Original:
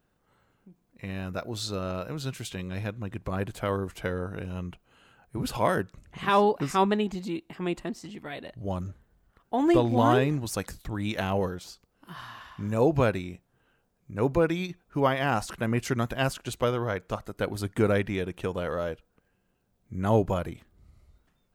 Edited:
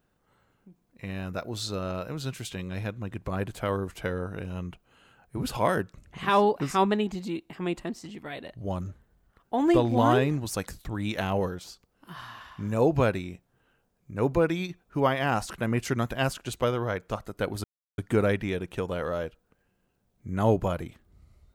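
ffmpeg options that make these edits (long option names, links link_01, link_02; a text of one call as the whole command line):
ffmpeg -i in.wav -filter_complex "[0:a]asplit=2[link_01][link_02];[link_01]atrim=end=17.64,asetpts=PTS-STARTPTS,afade=type=out:start_time=17.636:duration=0.004:curve=hsin,apad=pad_dur=0.34[link_03];[link_02]atrim=start=17.64,asetpts=PTS-STARTPTS,afade=type=in:duration=0.004:curve=hsin[link_04];[link_03][link_04]concat=n=2:v=0:a=1" out.wav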